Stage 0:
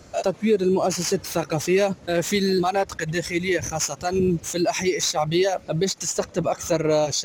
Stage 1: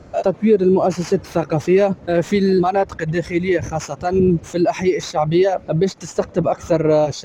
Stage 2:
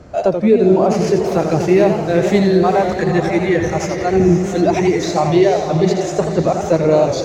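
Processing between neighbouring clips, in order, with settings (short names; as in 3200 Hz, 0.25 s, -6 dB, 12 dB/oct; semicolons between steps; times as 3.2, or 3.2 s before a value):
LPF 1100 Hz 6 dB/oct; gain +6.5 dB
diffused feedback echo 0.509 s, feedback 40%, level -7 dB; warbling echo 85 ms, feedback 49%, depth 142 cents, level -7 dB; gain +1.5 dB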